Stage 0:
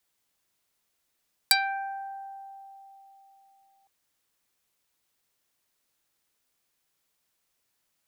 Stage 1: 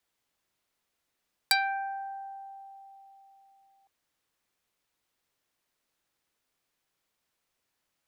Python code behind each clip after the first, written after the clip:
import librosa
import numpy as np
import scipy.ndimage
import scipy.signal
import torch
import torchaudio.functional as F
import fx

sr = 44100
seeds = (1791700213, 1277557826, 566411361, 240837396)

y = fx.high_shelf(x, sr, hz=5100.0, db=-8.0)
y = fx.hum_notches(y, sr, base_hz=50, count=4)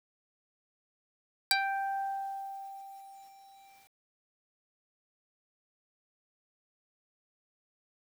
y = fx.rider(x, sr, range_db=4, speed_s=0.5)
y = fx.quant_dither(y, sr, seeds[0], bits=10, dither='none')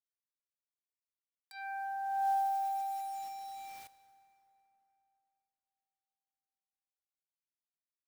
y = fx.over_compress(x, sr, threshold_db=-38.0, ratio=-0.5)
y = fx.rev_plate(y, sr, seeds[1], rt60_s=3.6, hf_ratio=0.6, predelay_ms=0, drr_db=13.5)
y = y * librosa.db_to_amplitude(4.0)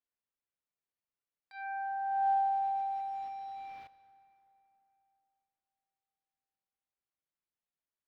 y = fx.air_absorb(x, sr, metres=330.0)
y = y * librosa.db_to_amplitude(3.5)